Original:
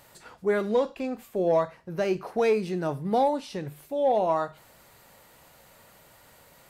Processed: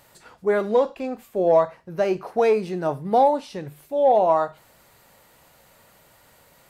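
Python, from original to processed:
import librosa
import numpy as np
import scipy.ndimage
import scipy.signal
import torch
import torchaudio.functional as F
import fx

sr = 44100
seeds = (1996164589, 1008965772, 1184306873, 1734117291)

y = fx.dynamic_eq(x, sr, hz=740.0, q=0.75, threshold_db=-36.0, ratio=4.0, max_db=7)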